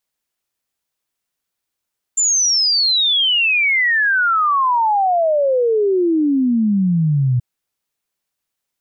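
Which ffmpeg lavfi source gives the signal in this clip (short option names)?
-f lavfi -i "aevalsrc='0.237*clip(min(t,5.23-t)/0.01,0,1)*sin(2*PI*7300*5.23/log(120/7300)*(exp(log(120/7300)*t/5.23)-1))':d=5.23:s=44100"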